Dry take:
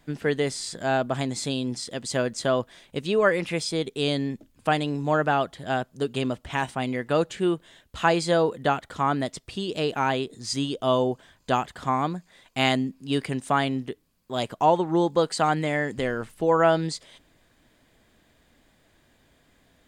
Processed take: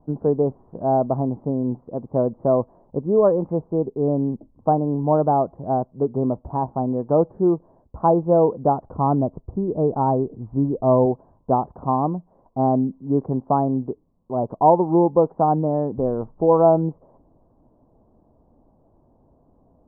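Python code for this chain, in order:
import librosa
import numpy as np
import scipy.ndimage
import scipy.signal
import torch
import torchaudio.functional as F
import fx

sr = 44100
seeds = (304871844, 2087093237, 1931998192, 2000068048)

y = scipy.signal.sosfilt(scipy.signal.butter(8, 1000.0, 'lowpass', fs=sr, output='sos'), x)
y = fx.low_shelf(y, sr, hz=110.0, db=9.5, at=(8.86, 11.06))
y = F.gain(torch.from_numpy(y), 5.5).numpy()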